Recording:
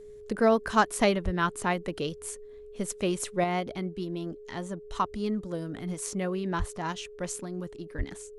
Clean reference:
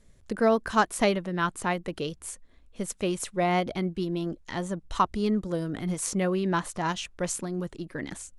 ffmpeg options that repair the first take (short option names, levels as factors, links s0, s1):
-filter_complex "[0:a]bandreject=f=420:w=30,asplit=3[s0][s1][s2];[s0]afade=t=out:st=1.24:d=0.02[s3];[s1]highpass=f=140:w=0.5412,highpass=f=140:w=1.3066,afade=t=in:st=1.24:d=0.02,afade=t=out:st=1.36:d=0.02[s4];[s2]afade=t=in:st=1.36:d=0.02[s5];[s3][s4][s5]amix=inputs=3:normalize=0,asplit=3[s6][s7][s8];[s6]afade=t=out:st=6.58:d=0.02[s9];[s7]highpass=f=140:w=0.5412,highpass=f=140:w=1.3066,afade=t=in:st=6.58:d=0.02,afade=t=out:st=6.7:d=0.02[s10];[s8]afade=t=in:st=6.7:d=0.02[s11];[s9][s10][s11]amix=inputs=3:normalize=0,asplit=3[s12][s13][s14];[s12]afade=t=out:st=7.97:d=0.02[s15];[s13]highpass=f=140:w=0.5412,highpass=f=140:w=1.3066,afade=t=in:st=7.97:d=0.02,afade=t=out:st=8.09:d=0.02[s16];[s14]afade=t=in:st=8.09:d=0.02[s17];[s15][s16][s17]amix=inputs=3:normalize=0,asetnsamples=n=441:p=0,asendcmd='3.44 volume volume 4.5dB',volume=1"